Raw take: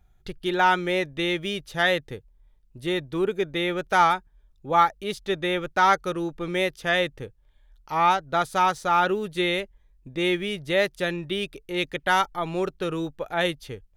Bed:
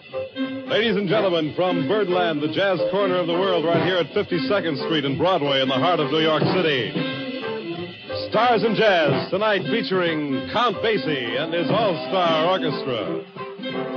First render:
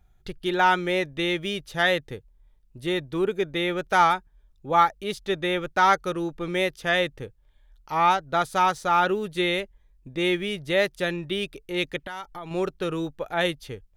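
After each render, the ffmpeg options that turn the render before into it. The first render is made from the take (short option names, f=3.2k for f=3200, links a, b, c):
-filter_complex "[0:a]asettb=1/sr,asplit=3[a][b][c];[a]atrim=end=11.974[d];[b]atrim=start=11.97:end=12.51,asetpts=PTS-STARTPTS,afade=t=in:d=0.004:c=qsin,afade=t=out:st=0.536:d=0.004:c=qsin,acompressor=threshold=-33dB:ratio=6:attack=3.2:release=140:knee=1:detection=peak[e];[c]atrim=start=12.506[f];[d][e]acrossfade=d=0.004:c1=hsin:c2=qsin[g];[g][f]acrossfade=d=0.004:c1=qsin:c2=hsin"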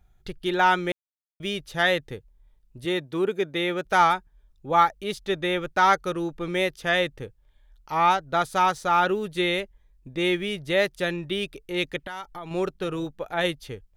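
-filter_complex "[0:a]asettb=1/sr,asplit=3[a][b][c];[a]atrim=end=2.854[d];[b]atrim=start=2.85:end=3.85,asetpts=PTS-STARTPTS,afade=t=in:d=0.004:c=qsin,afade=t=out:st=0.996:d=0.004:c=qsin,highpass=140[e];[c]atrim=start=3.846[f];[d][e]acrossfade=d=0.004:c1=hsin:c2=qsin[g];[g][f]acrossfade=d=0.004:c1=qsin:c2=hsin,asettb=1/sr,asplit=3[h][i][j];[h]atrim=end=12.724[k];[i]atrim=start=12.72:end=13.44,asetpts=PTS-STARTPTS,afade=t=in:d=0.004:c=qsin,afade=t=out:st=0.716:d=0.004:c=qsin,tremolo=f=190:d=0.261[l];[j]atrim=start=13.436[m];[k][l]acrossfade=d=0.004:c1=hsin:c2=qsin[n];[n][m]acrossfade=d=0.004:c1=qsin:c2=hsin,asplit=3[o][p][q];[o]atrim=end=0.92,asetpts=PTS-STARTPTS,afade=t=out:st=0.916:d=0.004:c=hsin[r];[p]atrim=start=0.92:end=1.4,asetpts=PTS-STARTPTS,volume=0[s];[q]atrim=start=1.4,asetpts=PTS-STARTPTS,afade=t=in:d=0.004:c=hsin[t];[r][s][t]concat=n=3:v=0:a=1"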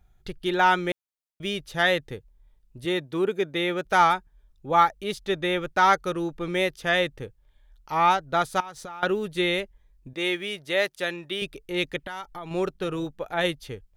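-filter_complex "[0:a]asettb=1/sr,asplit=3[a][b][c];[a]atrim=end=8.604[d];[b]atrim=start=8.6:end=9.03,asetpts=PTS-STARTPTS,afade=t=in:d=0.004:c=qsin,afade=t=out:st=0.426:d=0.004:c=qsin,acompressor=threshold=-34dB:ratio=20:attack=3.2:release=140:knee=1:detection=peak[e];[c]atrim=start=9.026[f];[d][e]acrossfade=d=0.004:c1=hsin:c2=qsin[g];[g][f]acrossfade=d=0.004:c1=qsin:c2=hsin,asettb=1/sr,asplit=3[h][i][j];[h]atrim=end=10.134[k];[i]atrim=start=10.13:end=11.42,asetpts=PTS-STARTPTS,afade=t=in:d=0.004:c=qsin,afade=t=out:st=1.286:d=0.004:c=qsin,highpass=f=490:p=1[l];[j]atrim=start=11.416[m];[k][l]acrossfade=d=0.004:c1=hsin:c2=qsin[n];[n][m]acrossfade=d=0.004:c1=qsin:c2=hsin"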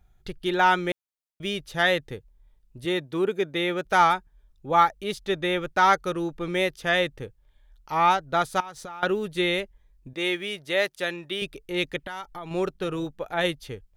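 -af anull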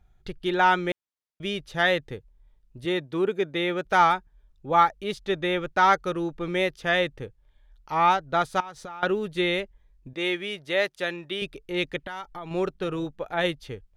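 -af "highshelf=f=8.2k:g=-11"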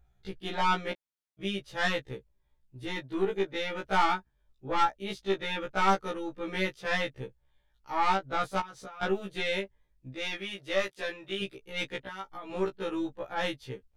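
-af "aeval=exprs='(tanh(6.31*val(0)+0.5)-tanh(0.5))/6.31':c=same,afftfilt=real='re*1.73*eq(mod(b,3),0)':imag='im*1.73*eq(mod(b,3),0)':win_size=2048:overlap=0.75"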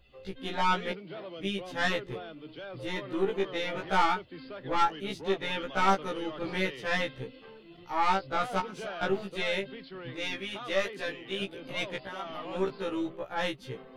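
-filter_complex "[1:a]volume=-22.5dB[a];[0:a][a]amix=inputs=2:normalize=0"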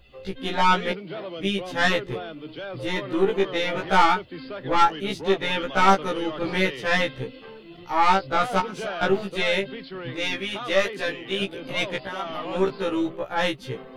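-af "volume=7.5dB"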